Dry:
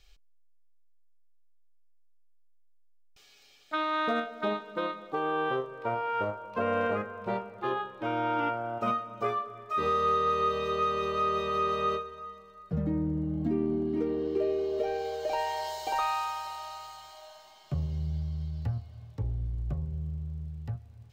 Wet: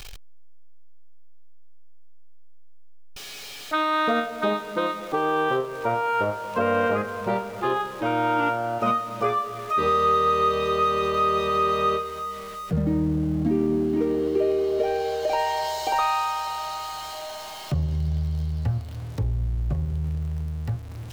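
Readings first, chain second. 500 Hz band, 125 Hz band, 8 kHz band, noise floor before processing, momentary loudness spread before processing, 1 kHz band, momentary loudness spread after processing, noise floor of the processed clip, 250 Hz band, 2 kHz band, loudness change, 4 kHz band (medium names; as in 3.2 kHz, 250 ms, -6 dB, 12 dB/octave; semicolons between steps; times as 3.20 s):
+6.5 dB, +7.0 dB, no reading, -58 dBFS, 11 LU, +6.5 dB, 10 LU, -38 dBFS, +6.5 dB, +7.0 dB, +6.5 dB, +7.5 dB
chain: jump at every zero crossing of -46 dBFS; in parallel at 0 dB: compression, threshold -42 dBFS, peak gain reduction 17.5 dB; on the sum: trim +4.5 dB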